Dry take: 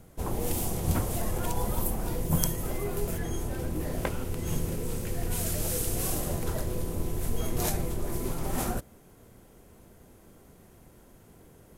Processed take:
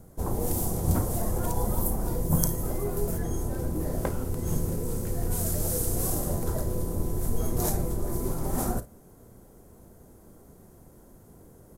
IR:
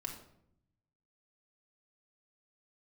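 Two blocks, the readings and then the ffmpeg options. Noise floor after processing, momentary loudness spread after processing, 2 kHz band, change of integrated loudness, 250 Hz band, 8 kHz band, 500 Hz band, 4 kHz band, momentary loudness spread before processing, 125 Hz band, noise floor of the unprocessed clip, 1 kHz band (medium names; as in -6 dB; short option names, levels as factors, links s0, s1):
-53 dBFS, 5 LU, -5.0 dB, +2.0 dB, +2.5 dB, +1.0 dB, +2.0 dB, -4.5 dB, 5 LU, +2.5 dB, -56 dBFS, +1.0 dB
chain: -af "equalizer=f=2700:t=o:w=1.4:g=-13,aecho=1:1:34|53:0.168|0.15,volume=1.33"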